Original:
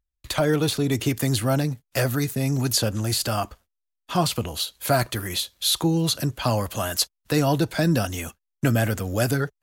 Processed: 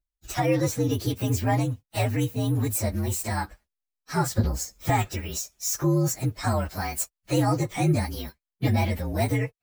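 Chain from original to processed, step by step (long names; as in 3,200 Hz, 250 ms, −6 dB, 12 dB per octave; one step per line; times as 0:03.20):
partials spread apart or drawn together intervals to 119%
0:04.38–0:04.90: low-shelf EQ 380 Hz +11 dB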